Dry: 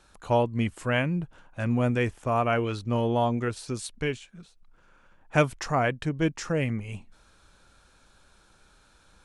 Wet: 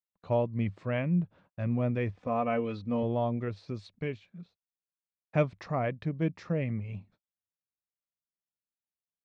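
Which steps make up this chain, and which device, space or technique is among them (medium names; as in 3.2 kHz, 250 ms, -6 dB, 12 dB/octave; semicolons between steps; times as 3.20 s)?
guitar cabinet (cabinet simulation 79–4100 Hz, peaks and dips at 100 Hz +9 dB, 180 Hz +9 dB, 590 Hz +4 dB, 870 Hz -4 dB, 1.5 kHz -7 dB, 3 kHz -8 dB); gate -51 dBFS, range -43 dB; 2.15–3.03 s: comb 4 ms, depth 66%; trim -6.5 dB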